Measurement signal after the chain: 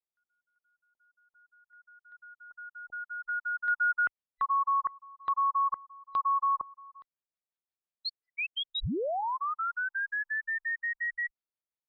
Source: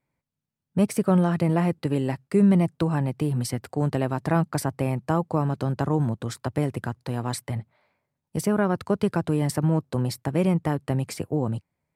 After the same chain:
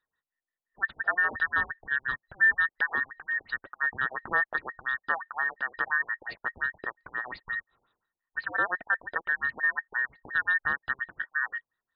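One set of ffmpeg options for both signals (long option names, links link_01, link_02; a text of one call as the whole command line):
ffmpeg -i in.wav -af "afftfilt=real='real(if(between(b,1,1012),(2*floor((b-1)/92)+1)*92-b,b),0)':imag='imag(if(between(b,1,1012),(2*floor((b-1)/92)+1)*92-b,b),0)*if(between(b,1,1012),-1,1)':win_size=2048:overlap=0.75,afftfilt=real='re*lt(b*sr/1024,840*pow(5100/840,0.5+0.5*sin(2*PI*5.7*pts/sr)))':imag='im*lt(b*sr/1024,840*pow(5100/840,0.5+0.5*sin(2*PI*5.7*pts/sr)))':win_size=1024:overlap=0.75,volume=-3.5dB" out.wav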